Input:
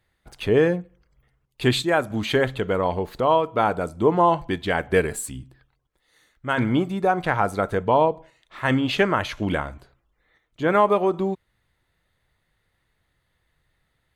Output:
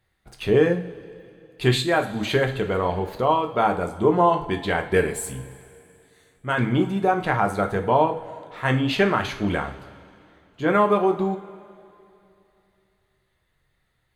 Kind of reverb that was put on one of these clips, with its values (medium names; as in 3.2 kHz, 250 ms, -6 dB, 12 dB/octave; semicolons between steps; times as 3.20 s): two-slope reverb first 0.35 s, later 2.8 s, from -19 dB, DRR 4 dB; trim -1.5 dB